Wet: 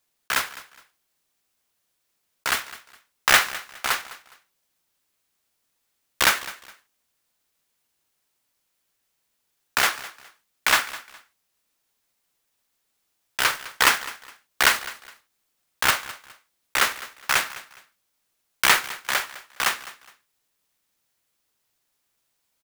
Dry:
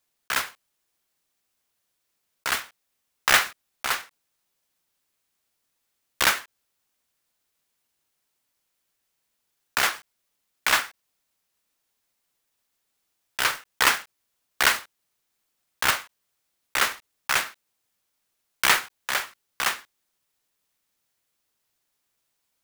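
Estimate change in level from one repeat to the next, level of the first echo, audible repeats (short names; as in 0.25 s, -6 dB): -11.5 dB, -17.5 dB, 2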